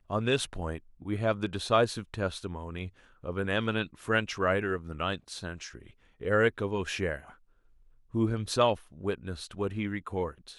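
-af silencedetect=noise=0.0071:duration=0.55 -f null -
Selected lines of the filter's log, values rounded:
silence_start: 7.31
silence_end: 8.14 | silence_duration: 0.84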